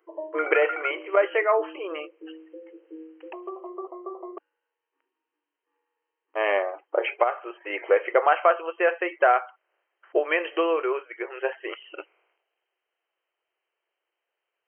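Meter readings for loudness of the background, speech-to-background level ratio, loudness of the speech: -37.0 LUFS, 12.5 dB, -24.5 LUFS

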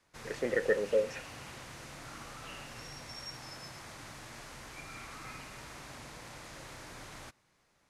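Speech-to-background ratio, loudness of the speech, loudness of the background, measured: 14.0 dB, -32.0 LUFS, -46.0 LUFS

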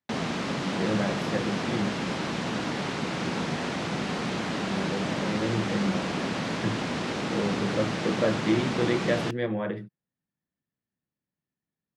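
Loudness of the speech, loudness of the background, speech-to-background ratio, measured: -31.0 LUFS, -30.0 LUFS, -1.0 dB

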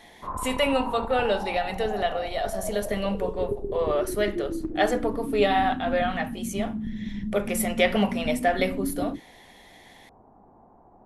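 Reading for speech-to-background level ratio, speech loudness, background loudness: 6.5 dB, -27.0 LUFS, -33.5 LUFS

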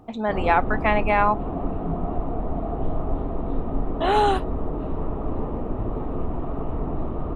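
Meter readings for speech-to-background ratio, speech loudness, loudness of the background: 7.0 dB, -22.5 LUFS, -29.5 LUFS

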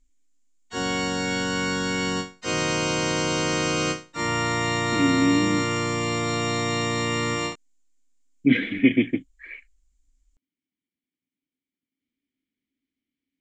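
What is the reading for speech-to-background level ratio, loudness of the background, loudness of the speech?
2.0 dB, -25.0 LUFS, -23.0 LUFS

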